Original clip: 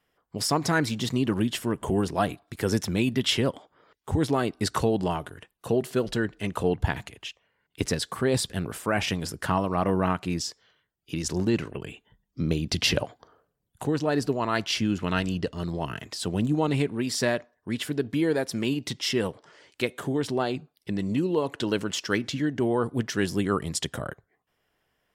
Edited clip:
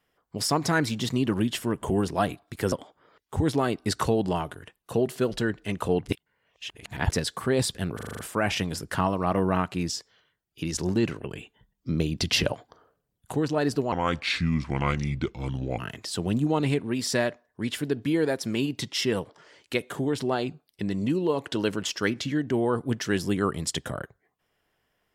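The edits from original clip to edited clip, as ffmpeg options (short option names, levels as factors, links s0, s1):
-filter_complex "[0:a]asplit=12[s0][s1][s2][s3][s4][s5][s6][s7][s8][s9][s10][s11];[s0]atrim=end=2.722[s12];[s1]atrim=start=3.468:end=6.812[s13];[s2]atrim=start=6.808:end=7.872,asetpts=PTS-STARTPTS,areverse[s14];[s3]atrim=start=7.868:end=8.742[s15];[s4]atrim=start=8.698:end=8.742[s16];[s5]atrim=start=8.698:end=8.742[s17];[s6]atrim=start=8.698:end=8.742[s18];[s7]atrim=start=8.698:end=8.742[s19];[s8]atrim=start=8.698:end=8.742[s20];[s9]atrim=start=8.698:end=14.434[s21];[s10]atrim=start=14.43:end=15.87,asetpts=PTS-STARTPTS,asetrate=33957,aresample=44100[s22];[s11]atrim=start=15.866[s23];[s12][s13]acrossfade=d=0.004:c1=hsin:c2=hsin[s24];[s24][s14]acrossfade=d=0.004:c1=hsin:c2=hsin[s25];[s25][s15]acrossfade=d=0.004:c1=hsin:c2=hsin[s26];[s26][s16]acrossfade=d=0.004:c1=hsin:c2=hsin[s27];[s27][s17]acrossfade=d=0.004:c1=hsin:c2=hsin[s28];[s28][s18]acrossfade=d=0.004:c1=hsin:c2=hsin[s29];[s29][s19]acrossfade=d=0.004:c1=hsin:c2=hsin[s30];[s30][s20]acrossfade=d=0.004:c1=hsin:c2=hsin[s31];[s31][s21]acrossfade=d=0.004:c1=hsin:c2=hsin[s32];[s32][s22]acrossfade=d=0.004:c1=hsin:c2=hsin[s33];[s33][s23]acrossfade=d=0.004:c1=hsin:c2=hsin"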